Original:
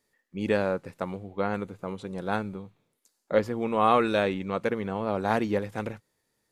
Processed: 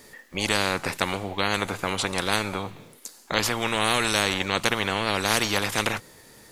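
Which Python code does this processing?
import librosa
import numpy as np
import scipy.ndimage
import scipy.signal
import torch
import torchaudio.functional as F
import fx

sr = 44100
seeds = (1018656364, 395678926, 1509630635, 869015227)

y = fx.spectral_comp(x, sr, ratio=4.0)
y = y * 10.0 ** (3.5 / 20.0)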